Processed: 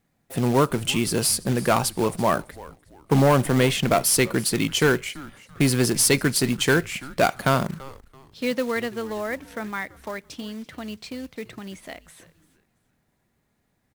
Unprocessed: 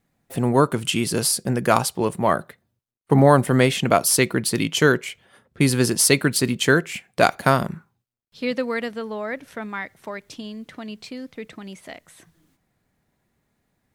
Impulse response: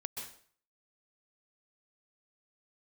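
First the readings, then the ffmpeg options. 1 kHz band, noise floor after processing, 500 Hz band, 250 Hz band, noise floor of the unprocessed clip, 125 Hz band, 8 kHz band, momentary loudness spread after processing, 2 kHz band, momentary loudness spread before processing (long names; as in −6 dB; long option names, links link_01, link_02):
−3.0 dB, −71 dBFS, −2.0 dB, −1.5 dB, −74 dBFS, −1.5 dB, −1.0 dB, 17 LU, −2.5 dB, 19 LU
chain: -filter_complex "[0:a]asoftclip=type=tanh:threshold=-11dB,acrusher=bits=4:mode=log:mix=0:aa=0.000001,asplit=2[link_01][link_02];[link_02]asplit=3[link_03][link_04][link_05];[link_03]adelay=335,afreqshift=-140,volume=-19.5dB[link_06];[link_04]adelay=670,afreqshift=-280,volume=-29.7dB[link_07];[link_05]adelay=1005,afreqshift=-420,volume=-39.8dB[link_08];[link_06][link_07][link_08]amix=inputs=3:normalize=0[link_09];[link_01][link_09]amix=inputs=2:normalize=0"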